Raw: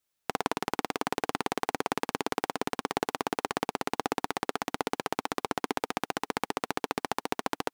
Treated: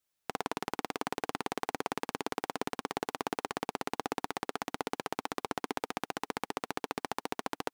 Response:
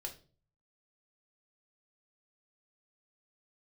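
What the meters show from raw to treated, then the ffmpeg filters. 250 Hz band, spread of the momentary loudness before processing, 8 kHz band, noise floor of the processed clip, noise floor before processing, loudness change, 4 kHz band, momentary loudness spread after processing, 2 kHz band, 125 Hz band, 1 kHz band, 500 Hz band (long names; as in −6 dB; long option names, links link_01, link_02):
−4.5 dB, 1 LU, −4.5 dB, −85 dBFS, −82 dBFS, −4.5 dB, −4.5 dB, 1 LU, −4.5 dB, −4.5 dB, −4.5 dB, −4.5 dB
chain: -af "alimiter=limit=-12.5dB:level=0:latency=1:release=129,volume=-2dB"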